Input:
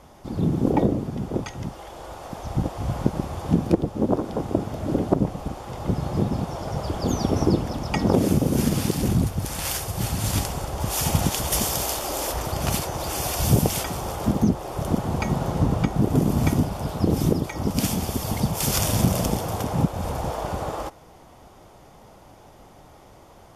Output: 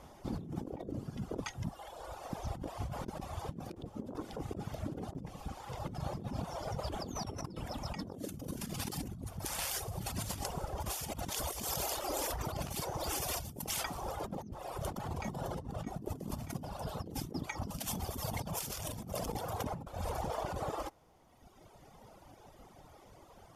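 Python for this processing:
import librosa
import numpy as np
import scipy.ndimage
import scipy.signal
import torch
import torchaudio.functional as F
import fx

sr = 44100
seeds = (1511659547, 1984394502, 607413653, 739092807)

y = fx.dereverb_blind(x, sr, rt60_s=1.9)
y = fx.over_compress(y, sr, threshold_db=-31.0, ratio=-1.0)
y = y * 10.0 ** (-9.0 / 20.0)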